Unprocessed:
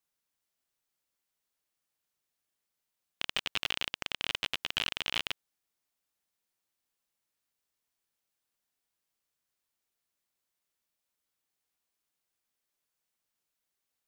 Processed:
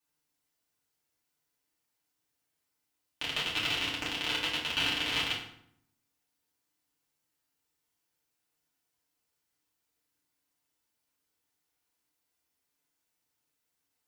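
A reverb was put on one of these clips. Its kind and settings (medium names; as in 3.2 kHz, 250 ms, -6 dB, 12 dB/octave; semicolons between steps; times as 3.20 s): FDN reverb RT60 0.68 s, low-frequency decay 1.4×, high-frequency decay 0.75×, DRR -7 dB; trim -4 dB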